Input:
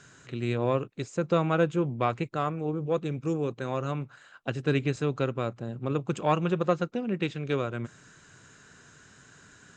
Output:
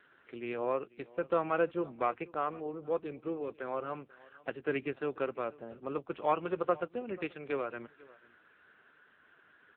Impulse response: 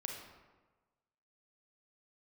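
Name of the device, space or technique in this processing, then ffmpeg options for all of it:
satellite phone: -af "highpass=370,lowpass=3200,aecho=1:1:488:0.0794,volume=0.75" -ar 8000 -c:a libopencore_amrnb -b:a 6700

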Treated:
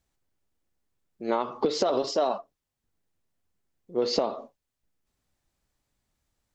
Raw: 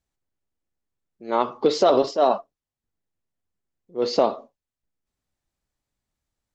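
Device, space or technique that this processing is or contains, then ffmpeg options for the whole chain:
serial compression, leveller first: -filter_complex "[0:a]acompressor=threshold=0.0794:ratio=1.5,acompressor=threshold=0.0447:ratio=6,asettb=1/sr,asplit=3[s0][s1][s2];[s0]atrim=end=1.934[s3];[s1]atrim=start=1.93:end=2.38,asetpts=PTS-STARTPTS,afade=t=in:d=0.004:c=qsin,afade=t=out:st=0.446:d=0.004:c=qsin,highshelf=f=3900:g=6.5[s4];[s2]atrim=start=2.376[s5];[s3][s4]acrossfade=d=0.004:c1=hsin:c2=qsin[s6];[s6][s5]acrossfade=d=0.004:c1=qsin:c2=hsin,volume=1.78"

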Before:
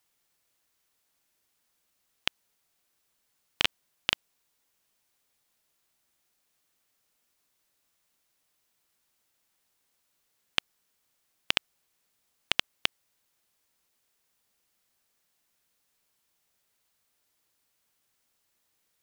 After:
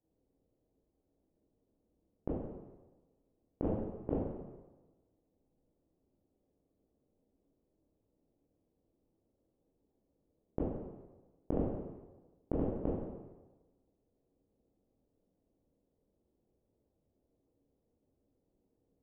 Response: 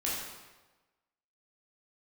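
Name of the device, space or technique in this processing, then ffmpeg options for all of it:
next room: -filter_complex "[0:a]lowpass=f=510:w=0.5412,lowpass=f=510:w=1.3066[s0];[1:a]atrim=start_sample=2205[s1];[s0][s1]afir=irnorm=-1:irlink=0,volume=2.24"

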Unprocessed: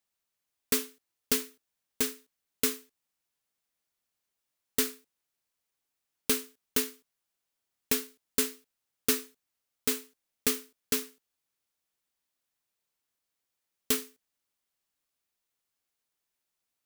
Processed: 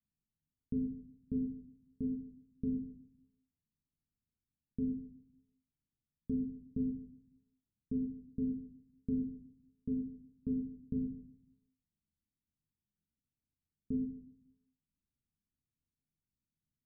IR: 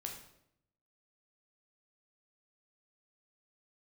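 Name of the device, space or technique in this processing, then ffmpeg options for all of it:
club heard from the street: -filter_complex "[0:a]alimiter=limit=0.141:level=0:latency=1,lowpass=f=240:w=0.5412,lowpass=f=240:w=1.3066[s0];[1:a]atrim=start_sample=2205[s1];[s0][s1]afir=irnorm=-1:irlink=0,volume=3.35"

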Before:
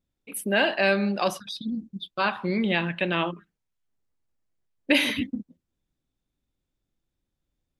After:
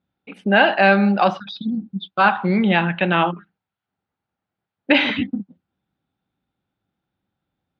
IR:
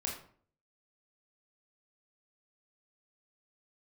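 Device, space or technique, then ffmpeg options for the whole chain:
guitar cabinet: -af "highpass=96,equalizer=f=100:t=q:w=4:g=4,equalizer=f=190:t=q:w=4:g=6,equalizer=f=800:t=q:w=4:g=10,equalizer=f=1400:t=q:w=4:g=8,lowpass=f=3900:w=0.5412,lowpass=f=3900:w=1.3066,volume=1.68"

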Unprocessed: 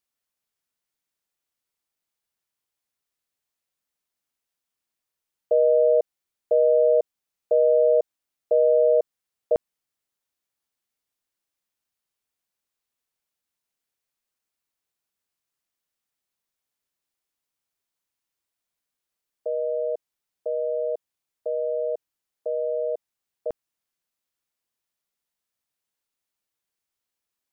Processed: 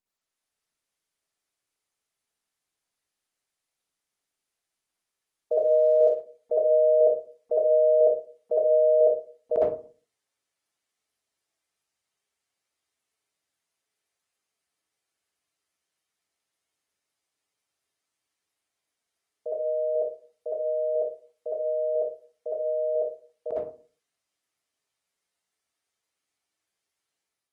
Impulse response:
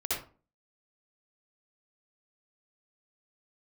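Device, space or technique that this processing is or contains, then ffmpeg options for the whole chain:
far-field microphone of a smart speaker: -filter_complex "[0:a]bandreject=f=50:t=h:w=6,bandreject=f=100:t=h:w=6,bandreject=f=150:t=h:w=6,bandreject=f=200:t=h:w=6,bandreject=f=250:t=h:w=6,bandreject=f=300:t=h:w=6,bandreject=f=350:t=h:w=6,bandreject=f=400:t=h:w=6,bandreject=f=450:t=h:w=6,asettb=1/sr,asplit=3[s0][s1][s2];[s0]atrim=end=5.564[s3];[s1]atrim=start=5.56:end=5.97,asetpts=PTS-STARTPTS,afade=t=in:d=0.004:c=qsin,afade=t=out:st=0.406:d=0.004:c=qsin,equalizer=f=99:t=o:w=1.4:g=6[s4];[s2]atrim=start=5.966[s5];[s3][s4]acrossfade=d=0.004:c1=hsin:c2=qsin[s6];[s6][s5]acrossfade=d=0.004:c1=qsin:c2=hsin[s7];[1:a]atrim=start_sample=2205[s8];[s7][s8]afir=irnorm=-1:irlink=0,highpass=100,dynaudnorm=f=140:g=5:m=2,volume=0.422" -ar 48000 -c:a libopus -b:a 20k

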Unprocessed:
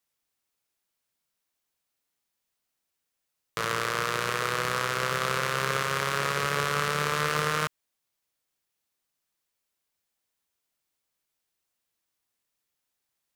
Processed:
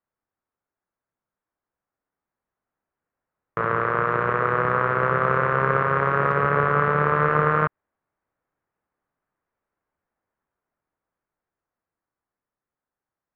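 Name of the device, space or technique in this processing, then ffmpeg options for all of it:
action camera in a waterproof case: -af "lowpass=f=1600:w=0.5412,lowpass=f=1600:w=1.3066,dynaudnorm=f=670:g=9:m=2.24,volume=1.26" -ar 44100 -c:a aac -b:a 128k

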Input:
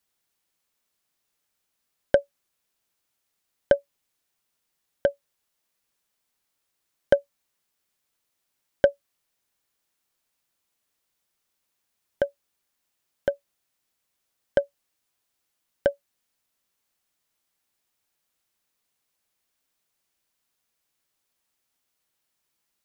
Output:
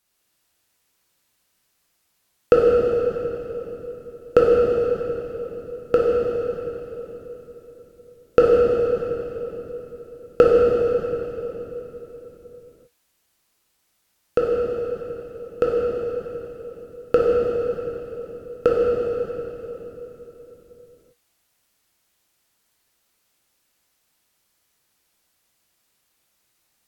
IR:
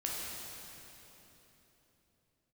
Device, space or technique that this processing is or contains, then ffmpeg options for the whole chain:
slowed and reverbed: -filter_complex "[0:a]asetrate=37485,aresample=44100[s0];[1:a]atrim=start_sample=2205[s1];[s0][s1]afir=irnorm=-1:irlink=0,volume=1.88"

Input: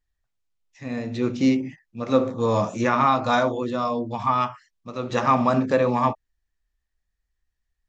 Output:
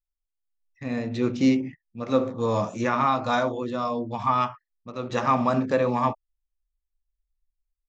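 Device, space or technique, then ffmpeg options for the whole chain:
voice memo with heavy noise removal: -af "anlmdn=0.0631,dynaudnorm=f=400:g=3:m=3.55,volume=0.376"

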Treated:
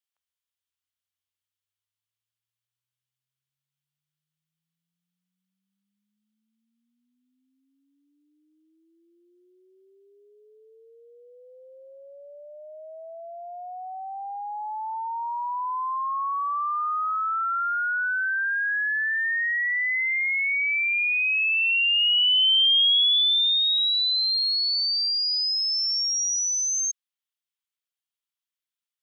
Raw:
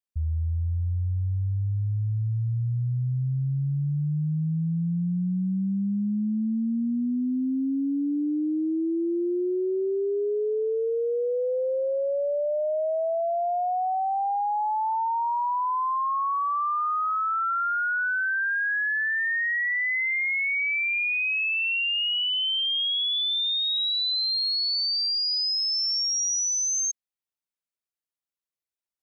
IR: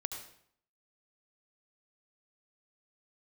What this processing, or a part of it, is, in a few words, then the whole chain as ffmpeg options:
headphones lying on a table: -af "highpass=f=1000:w=0.5412,highpass=f=1000:w=1.3066,equalizer=f=3200:t=o:w=0.5:g=7"

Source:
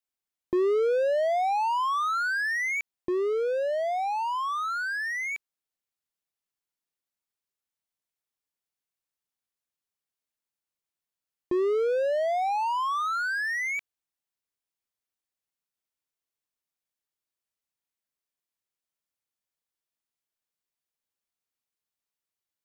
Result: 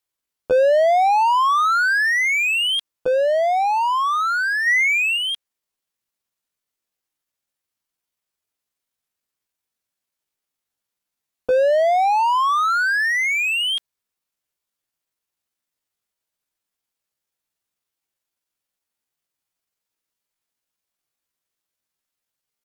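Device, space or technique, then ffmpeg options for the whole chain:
chipmunk voice: -filter_complex "[0:a]asplit=3[s0][s1][s2];[s0]afade=t=out:st=4.67:d=0.02[s3];[s1]equalizer=f=1300:w=1.3:g=5.5,afade=t=in:st=4.67:d=0.02,afade=t=out:st=5.18:d=0.02[s4];[s2]afade=t=in:st=5.18:d=0.02[s5];[s3][s4][s5]amix=inputs=3:normalize=0,asetrate=62367,aresample=44100,atempo=0.707107,volume=2.66"

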